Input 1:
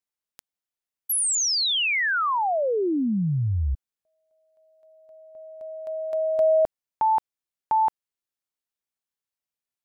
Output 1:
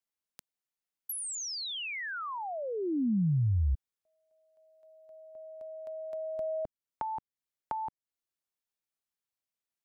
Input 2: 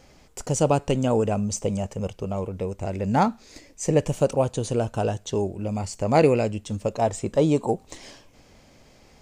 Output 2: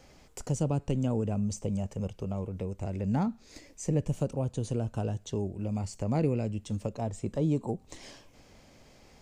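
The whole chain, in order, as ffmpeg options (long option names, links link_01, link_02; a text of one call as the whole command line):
ffmpeg -i in.wav -filter_complex "[0:a]acrossover=split=290[link_01][link_02];[link_02]acompressor=threshold=-43dB:ratio=2:attack=26:release=358:knee=2.83:detection=peak[link_03];[link_01][link_03]amix=inputs=2:normalize=0,volume=-3dB" out.wav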